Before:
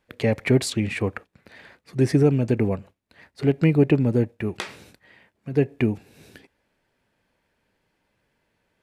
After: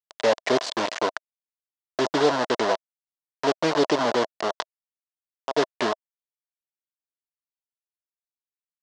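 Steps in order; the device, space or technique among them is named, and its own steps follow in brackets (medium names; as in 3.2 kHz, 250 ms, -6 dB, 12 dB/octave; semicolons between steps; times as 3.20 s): hand-held game console (bit crusher 4-bit; cabinet simulation 460–5700 Hz, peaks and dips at 640 Hz +9 dB, 1 kHz +6 dB, 2.4 kHz -8 dB); trim +1.5 dB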